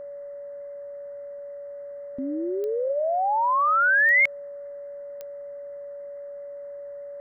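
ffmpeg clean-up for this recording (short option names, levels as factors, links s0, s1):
-af "adeclick=t=4,bandreject=f=570:w=30,agate=range=0.0891:threshold=0.0316"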